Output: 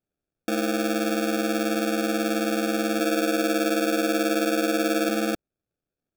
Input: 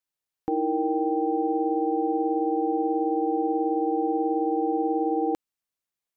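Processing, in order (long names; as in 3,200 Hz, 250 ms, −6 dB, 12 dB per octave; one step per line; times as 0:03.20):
0:02.99–0:05.09: comb filter 6.9 ms, depth 66%
sample-rate reduction 1,000 Hz, jitter 0%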